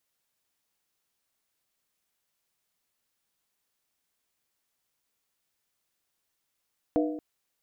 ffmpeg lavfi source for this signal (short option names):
-f lavfi -i "aevalsrc='0.0841*pow(10,-3*t/0.9)*sin(2*PI*305*t)+0.0562*pow(10,-3*t/0.713)*sin(2*PI*486.2*t)+0.0376*pow(10,-3*t/0.616)*sin(2*PI*651.5*t)+0.0251*pow(10,-3*t/0.594)*sin(2*PI*700.3*t)':d=0.23:s=44100"